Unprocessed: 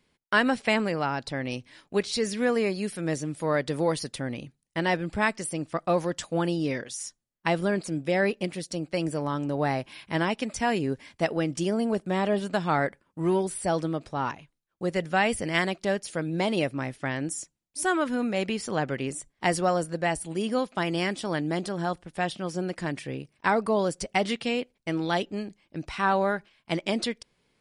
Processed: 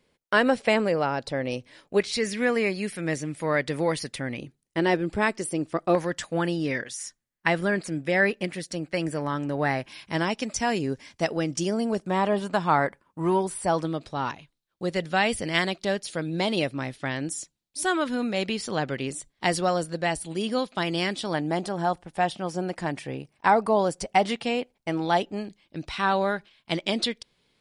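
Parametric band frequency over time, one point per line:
parametric band +7.5 dB 0.7 octaves
520 Hz
from 0:02.00 2,100 Hz
from 0:04.39 370 Hz
from 0:05.95 1,800 Hz
from 0:09.88 5,800 Hz
from 0:12.08 1,000 Hz
from 0:13.85 3,900 Hz
from 0:21.34 800 Hz
from 0:25.45 3,700 Hz

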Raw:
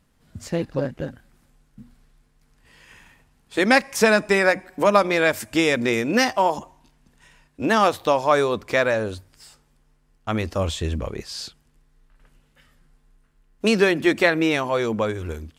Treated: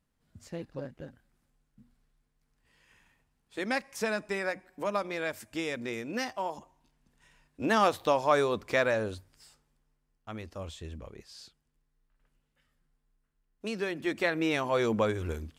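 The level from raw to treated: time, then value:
0:06.53 −14.5 dB
0:07.78 −6.5 dB
0:09.05 −6.5 dB
0:10.35 −16.5 dB
0:13.74 −16.5 dB
0:14.85 −4 dB

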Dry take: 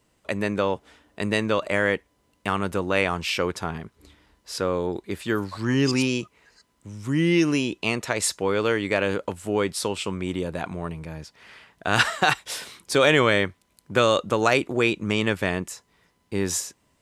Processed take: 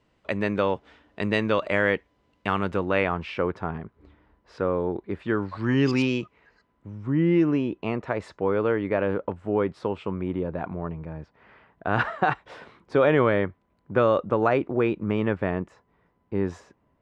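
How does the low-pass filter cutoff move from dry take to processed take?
0:02.61 3,500 Hz
0:03.35 1,500 Hz
0:05.09 1,500 Hz
0:05.99 3,300 Hz
0:07.07 1,300 Hz

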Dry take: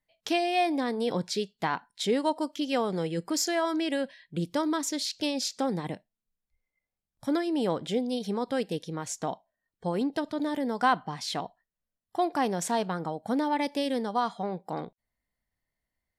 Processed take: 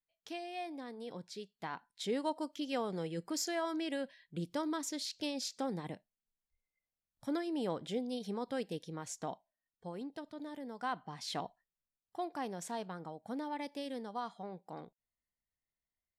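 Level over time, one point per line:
0:01.29 −16.5 dB
0:02.18 −8.5 dB
0:09.32 −8.5 dB
0:09.98 −15 dB
0:10.81 −15 dB
0:11.45 −5 dB
0:12.26 −12.5 dB

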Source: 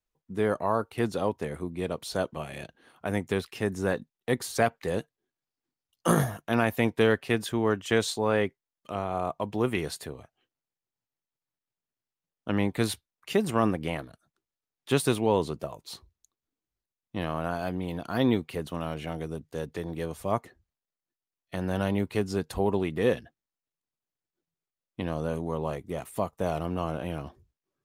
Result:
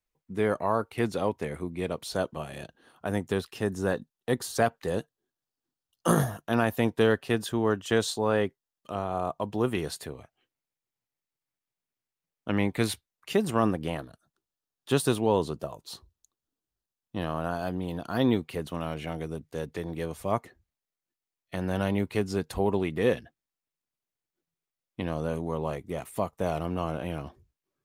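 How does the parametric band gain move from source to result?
parametric band 2,200 Hz 0.34 octaves
0:01.81 +4 dB
0:02.49 −7.5 dB
0:09.76 −7.5 dB
0:10.16 +3.5 dB
0:12.86 +3.5 dB
0:13.82 −7.5 dB
0:17.91 −7.5 dB
0:18.72 +2 dB

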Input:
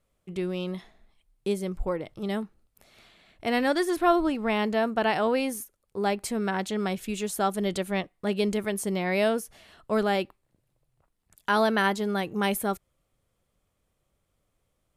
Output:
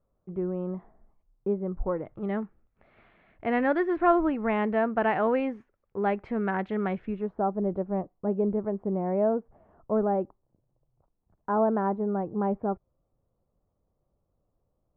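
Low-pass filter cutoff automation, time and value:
low-pass filter 24 dB per octave
0:01.68 1,200 Hz
0:02.40 2,100 Hz
0:06.96 2,100 Hz
0:07.42 1,000 Hz

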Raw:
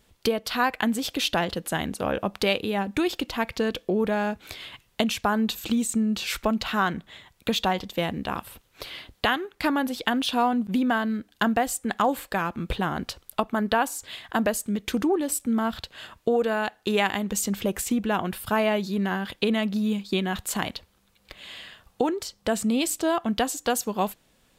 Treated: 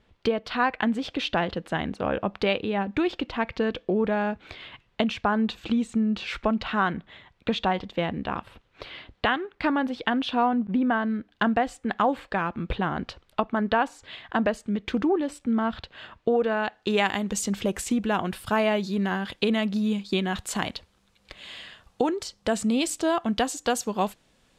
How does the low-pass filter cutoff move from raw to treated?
0:10.28 3,000 Hz
0:10.73 1,800 Hz
0:11.43 3,200 Hz
0:16.56 3,200 Hz
0:17.08 8,400 Hz

